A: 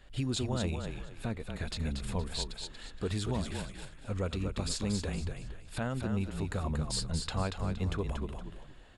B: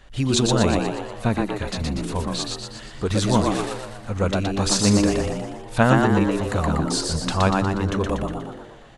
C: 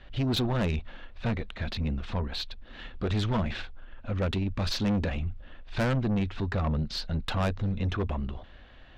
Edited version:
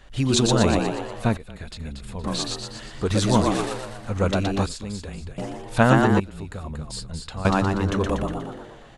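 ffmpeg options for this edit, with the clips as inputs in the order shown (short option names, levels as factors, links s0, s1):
-filter_complex "[0:a]asplit=3[s0][s1][s2];[1:a]asplit=4[s3][s4][s5][s6];[s3]atrim=end=1.372[s7];[s0]atrim=start=1.368:end=2.242[s8];[s4]atrim=start=2.238:end=4.662[s9];[s1]atrim=start=4.658:end=5.382[s10];[s5]atrim=start=5.378:end=6.202[s11];[s2]atrim=start=6.198:end=7.452[s12];[s6]atrim=start=7.448[s13];[s7][s8]acrossfade=d=0.004:c1=hsin:c2=hsin[s14];[s14][s9]acrossfade=d=0.004:c1=hsin:c2=hsin[s15];[s15][s10]acrossfade=d=0.004:c1=hsin:c2=hsin[s16];[s16][s11]acrossfade=d=0.004:c1=hsin:c2=hsin[s17];[s17][s12]acrossfade=d=0.004:c1=hsin:c2=hsin[s18];[s18][s13]acrossfade=d=0.004:c1=hsin:c2=hsin"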